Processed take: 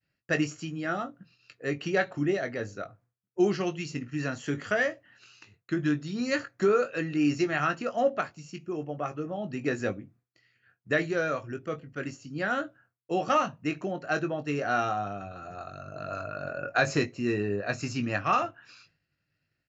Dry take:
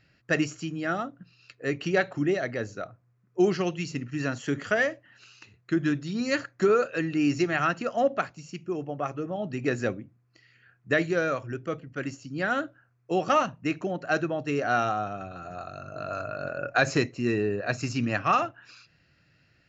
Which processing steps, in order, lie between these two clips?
downward expander −54 dBFS
double-tracking delay 20 ms −8.5 dB
level −2.5 dB

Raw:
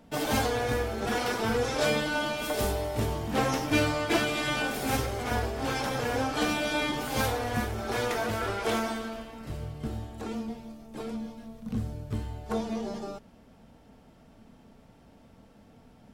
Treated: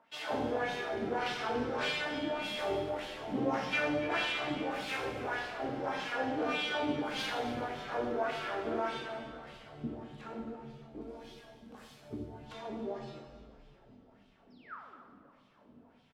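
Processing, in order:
0:11.01–0:12.02: RIAA equalisation recording
0:14.50–0:15.01: sound drawn into the spectrogram fall 210–5,700 Hz −41 dBFS
auto-filter band-pass sine 1.7 Hz 250–3,400 Hz
echo with shifted repeats 283 ms, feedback 57%, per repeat −84 Hz, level −16 dB
dense smooth reverb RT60 1.3 s, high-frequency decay 0.9×, DRR 0.5 dB

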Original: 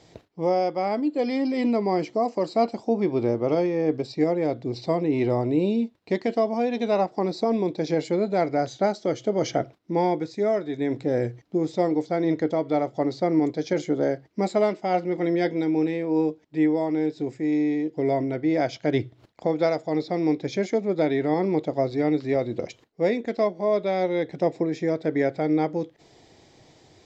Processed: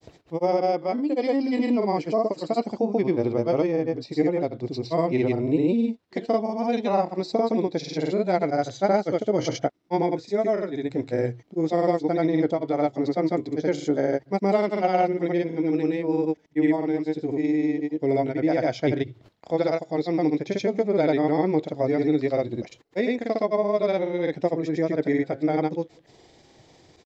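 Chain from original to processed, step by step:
granular cloud, pitch spread up and down by 0 semitones
level +1.5 dB

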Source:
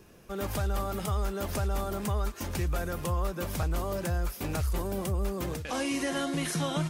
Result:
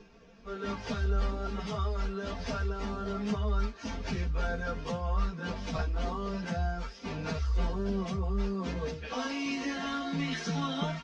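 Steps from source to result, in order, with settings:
Butterworth low-pass 5,700 Hz 36 dB per octave
comb filter 4.4 ms, depth 75%
time stretch by phase vocoder 1.6×

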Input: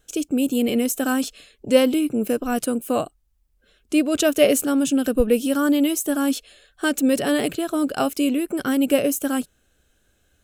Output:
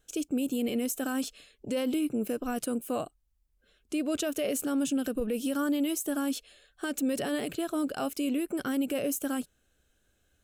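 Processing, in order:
brickwall limiter −14.5 dBFS, peak gain reduction 11.5 dB
level −7 dB

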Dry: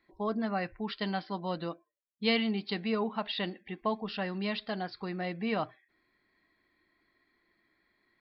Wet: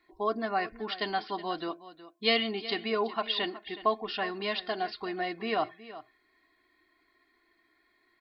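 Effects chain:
low-shelf EQ 290 Hz −7.5 dB
comb filter 2.8 ms, depth 64%
single-tap delay 369 ms −15.5 dB
level +3 dB

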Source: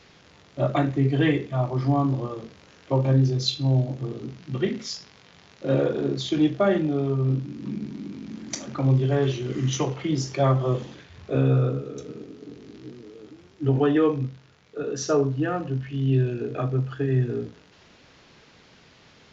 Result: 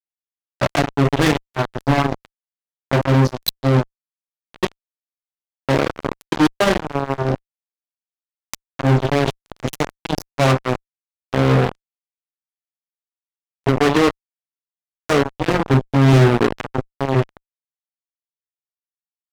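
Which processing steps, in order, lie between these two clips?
0:15.48–0:16.53: low shelf with overshoot 550 Hz +7.5 dB, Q 1.5
power curve on the samples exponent 3
fuzz pedal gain 44 dB, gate −52 dBFS
level +5.5 dB

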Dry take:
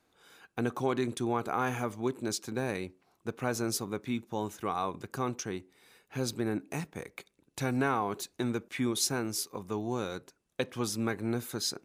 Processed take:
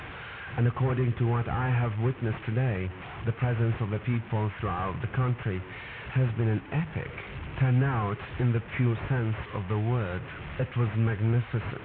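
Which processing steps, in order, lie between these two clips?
linear delta modulator 16 kbit/s, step −42.5 dBFS
low shelf with overshoot 170 Hz +11 dB, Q 1.5
in parallel at −1 dB: downward compressor, threshold −36 dBFS, peak gain reduction 13.5 dB
on the sum: high-pass filter 47 Hz
parametric band 1,900 Hz +4.5 dB 1.9 octaves

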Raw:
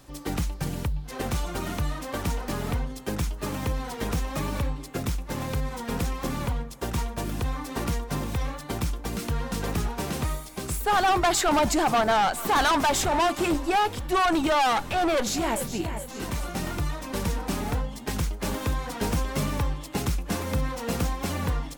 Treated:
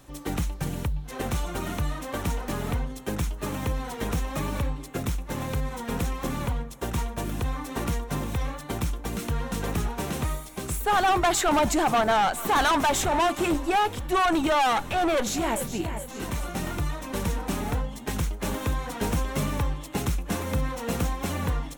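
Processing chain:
parametric band 4,800 Hz −6.5 dB 0.28 octaves

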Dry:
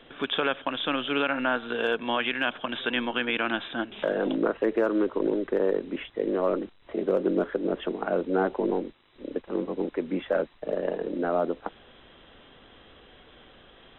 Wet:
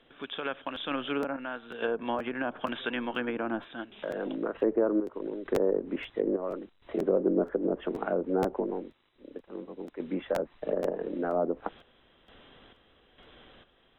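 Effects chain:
sample-and-hold tremolo 2.2 Hz, depth 75%
treble cut that deepens with the level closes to 870 Hz, closed at −24 dBFS
regular buffer underruns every 0.48 s, samples 512, repeat, from 0:00.74

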